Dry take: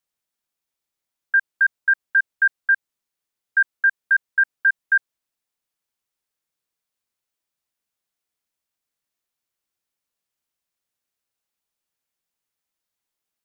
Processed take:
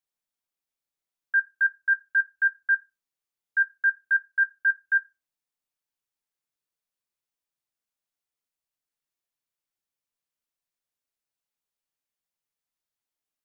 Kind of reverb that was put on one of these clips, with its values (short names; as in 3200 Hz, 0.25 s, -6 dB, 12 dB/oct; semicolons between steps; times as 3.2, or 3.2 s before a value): shoebox room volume 120 m³, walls furnished, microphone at 0.36 m; gain -7 dB